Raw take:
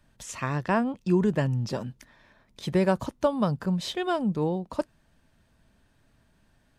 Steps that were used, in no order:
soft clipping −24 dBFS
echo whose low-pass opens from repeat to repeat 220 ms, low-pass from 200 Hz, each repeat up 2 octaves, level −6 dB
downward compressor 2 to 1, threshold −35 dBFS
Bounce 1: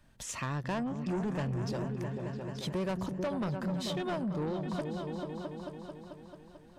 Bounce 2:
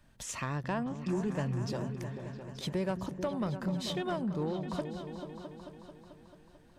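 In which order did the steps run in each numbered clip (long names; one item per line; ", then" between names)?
echo whose low-pass opens from repeat to repeat, then soft clipping, then downward compressor
downward compressor, then echo whose low-pass opens from repeat to repeat, then soft clipping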